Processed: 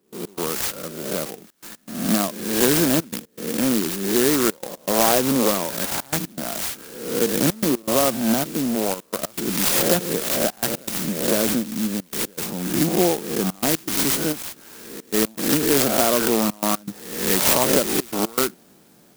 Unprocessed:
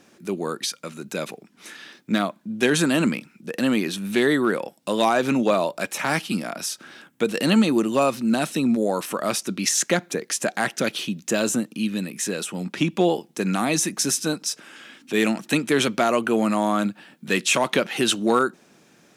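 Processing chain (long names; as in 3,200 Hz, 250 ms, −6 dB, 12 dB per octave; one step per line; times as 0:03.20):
peak hold with a rise ahead of every peak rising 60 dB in 0.81 s
0:05.20–0:05.84: parametric band 640 Hz −9.5 dB 0.33 octaves
0:08.40–0:09.32: output level in coarse steps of 11 dB
gate pattern ".x.xxxxxxxxx" 120 BPM −24 dB
0:14.32–0:15.14: downward compressor 3 to 1, threshold −31 dBFS, peak gain reduction 8.5 dB
converter with an unsteady clock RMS 0.14 ms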